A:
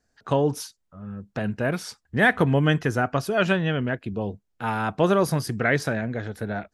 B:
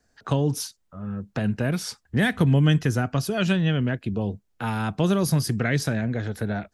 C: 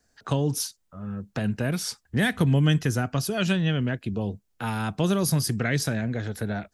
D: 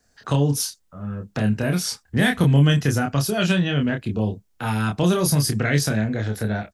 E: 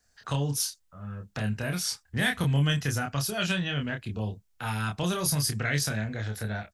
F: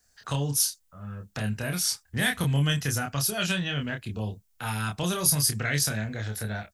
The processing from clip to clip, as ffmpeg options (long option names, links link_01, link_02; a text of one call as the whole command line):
ffmpeg -i in.wav -filter_complex "[0:a]acrossover=split=260|3000[link_01][link_02][link_03];[link_02]acompressor=threshold=-37dB:ratio=2.5[link_04];[link_01][link_04][link_03]amix=inputs=3:normalize=0,volume=4.5dB" out.wav
ffmpeg -i in.wav -af "highshelf=frequency=4300:gain=6,volume=-2dB" out.wav
ffmpeg -i in.wav -filter_complex "[0:a]asplit=2[link_01][link_02];[link_02]adelay=28,volume=-4dB[link_03];[link_01][link_03]amix=inputs=2:normalize=0,volume=3dB" out.wav
ffmpeg -i in.wav -af "equalizer=frequency=300:width=0.53:gain=-9,volume=-3.5dB" out.wav
ffmpeg -i in.wav -af "crystalizer=i=1:c=0" out.wav